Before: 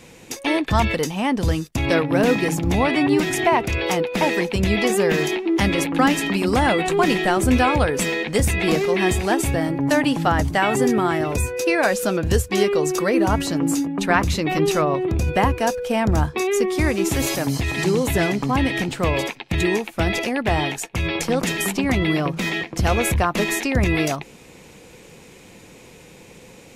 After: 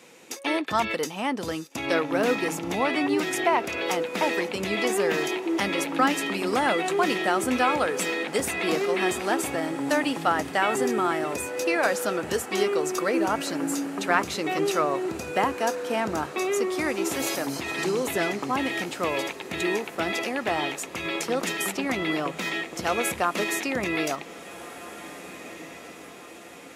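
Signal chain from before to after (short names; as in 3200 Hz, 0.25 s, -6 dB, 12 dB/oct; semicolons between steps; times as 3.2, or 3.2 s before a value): HPF 280 Hz 12 dB/oct; bell 1300 Hz +5 dB 0.22 oct; on a send: diffused feedback echo 1.716 s, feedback 55%, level -15 dB; on the sum: gain -4.5 dB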